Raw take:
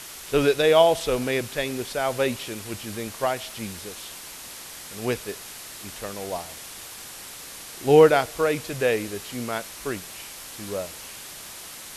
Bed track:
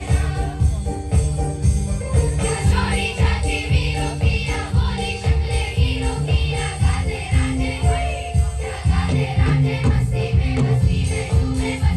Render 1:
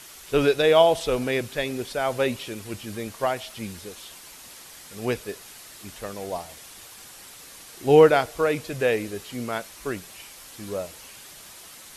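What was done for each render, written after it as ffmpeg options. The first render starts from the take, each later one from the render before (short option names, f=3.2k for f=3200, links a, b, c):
-af "afftdn=nr=6:nf=-40"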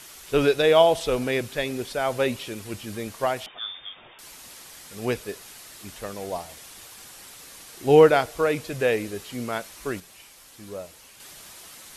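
-filter_complex "[0:a]asettb=1/sr,asplit=3[a][b][c];[a]atrim=end=3.464[d];[b]atrim=start=3.46:end=4.19,asetpts=PTS-STARTPTS,afade=t=in:d=0.004:c=qsin,afade=t=out:st=0.726:d=0.004:c=qsin,lowpass=f=3.1k:t=q:w=0.5098,lowpass=f=3.1k:t=q:w=0.6013,lowpass=f=3.1k:t=q:w=0.9,lowpass=f=3.1k:t=q:w=2.563,afreqshift=-3700[e];[c]atrim=start=4.186[f];[d][e]acrossfade=d=0.004:c1=hsin:c2=qsin[g];[g][f]acrossfade=d=0.004:c1=qsin:c2=hsin,asplit=3[h][i][j];[h]atrim=end=10.002[k];[i]atrim=start=9.998:end=11.202,asetpts=PTS-STARTPTS,volume=-5.5dB[l];[j]atrim=start=11.198[m];[k][l]acrossfade=d=0.004:c1=hsin:c2=hsin[n];[n][m]acrossfade=d=0.004:c1=hsin:c2=hsin"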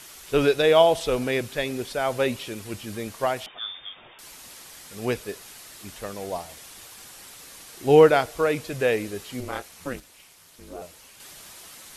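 -filter_complex "[0:a]asettb=1/sr,asplit=3[a][b][c];[a]atrim=end=9.404[d];[b]atrim=start=9.4:end=10.82,asetpts=PTS-STARTPTS,afade=t=in:d=0.004:c=qsin,afade=t=out:st=1.416:d=0.004:c=qsin,aeval=exprs='val(0)*sin(2*PI*130*n/s)':c=same[e];[c]atrim=start=10.816[f];[d][e]acrossfade=d=0.004:c1=hsin:c2=qsin[g];[g][f]acrossfade=d=0.004:c1=qsin:c2=hsin"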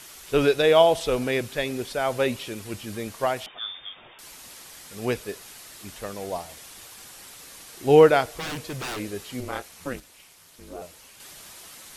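-filter_complex "[0:a]asettb=1/sr,asplit=3[a][b][c];[a]atrim=end=8.354[d];[b]atrim=start=8.35:end=9,asetpts=PTS-STARTPTS,afade=t=in:d=0.004:c=qsin,afade=t=out:st=0.646:d=0.004:c=qsin,aeval=exprs='0.0447*(abs(mod(val(0)/0.0447+3,4)-2)-1)':c=same[e];[c]atrim=start=8.996[f];[d][e]acrossfade=d=0.004:c1=hsin:c2=qsin[g];[g][f]acrossfade=d=0.004:c1=qsin:c2=hsin"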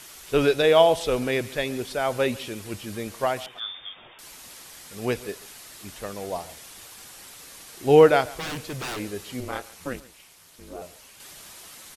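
-af "aecho=1:1:139:0.1"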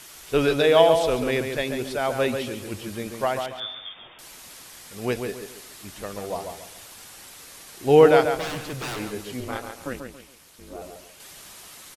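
-filter_complex "[0:a]asplit=2[a][b];[b]adelay=139,lowpass=f=2.6k:p=1,volume=-7.5dB,asplit=2[c][d];[d]adelay=139,lowpass=f=2.6k:p=1,volume=0.32,asplit=2[e][f];[f]adelay=139,lowpass=f=2.6k:p=1,volume=0.32,asplit=2[g][h];[h]adelay=139,lowpass=f=2.6k:p=1,volume=0.32[i];[a][c][e][g][i]amix=inputs=5:normalize=0"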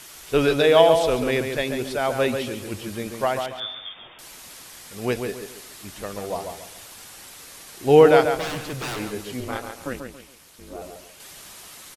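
-af "volume=1.5dB,alimiter=limit=-2dB:level=0:latency=1"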